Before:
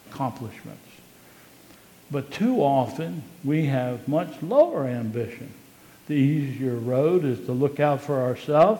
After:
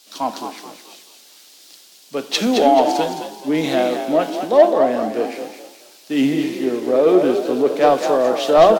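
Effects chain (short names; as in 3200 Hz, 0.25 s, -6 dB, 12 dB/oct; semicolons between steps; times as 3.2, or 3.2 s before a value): HPF 210 Hz 24 dB/oct; overdrive pedal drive 14 dB, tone 1300 Hz, clips at -5.5 dBFS; in parallel at +2 dB: limiter -17 dBFS, peak gain reduction 10.5 dB; on the sum: resonant high shelf 3100 Hz +10.5 dB, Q 1.5; on a send: frequency-shifting echo 0.216 s, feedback 48%, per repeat +42 Hz, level -6 dB; on the sum: three-band expander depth 70%; gain -1 dB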